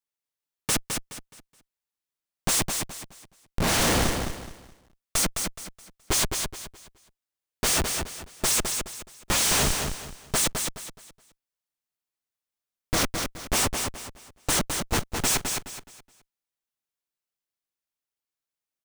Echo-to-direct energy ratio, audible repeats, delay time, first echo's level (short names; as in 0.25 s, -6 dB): -5.0 dB, 3, 0.211 s, -5.5 dB